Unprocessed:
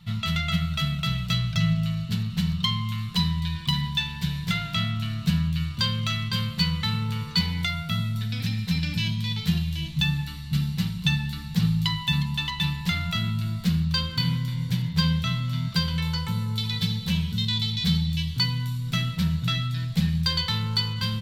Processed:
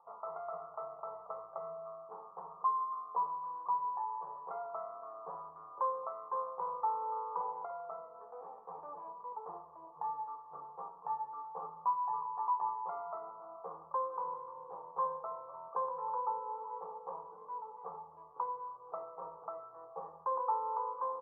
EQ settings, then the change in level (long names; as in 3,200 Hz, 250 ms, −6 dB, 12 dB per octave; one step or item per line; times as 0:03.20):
elliptic high-pass filter 480 Hz, stop band 50 dB
Chebyshev low-pass with heavy ripple 1,200 Hz, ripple 6 dB
+10.5 dB